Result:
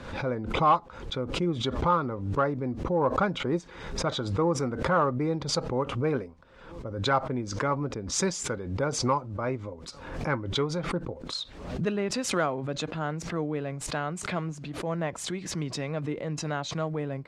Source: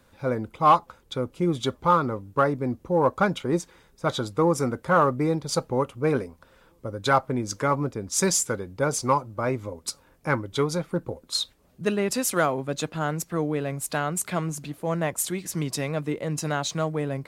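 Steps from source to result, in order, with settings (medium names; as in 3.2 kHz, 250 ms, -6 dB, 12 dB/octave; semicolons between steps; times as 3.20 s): distance through air 120 m; swell ahead of each attack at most 64 dB/s; trim -4 dB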